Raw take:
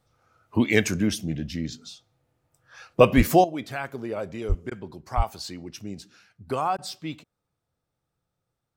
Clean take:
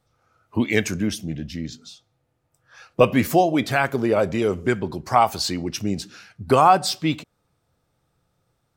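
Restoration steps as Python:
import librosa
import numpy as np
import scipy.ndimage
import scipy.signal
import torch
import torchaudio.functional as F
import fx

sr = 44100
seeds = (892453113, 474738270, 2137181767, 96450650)

y = fx.highpass(x, sr, hz=140.0, slope=24, at=(3.16, 3.28), fade=0.02)
y = fx.highpass(y, sr, hz=140.0, slope=24, at=(4.48, 4.6), fade=0.02)
y = fx.highpass(y, sr, hz=140.0, slope=24, at=(5.16, 5.28), fade=0.02)
y = fx.fix_interpolate(y, sr, at_s=(4.7, 6.77), length_ms=13.0)
y = fx.fix_level(y, sr, at_s=3.44, step_db=11.5)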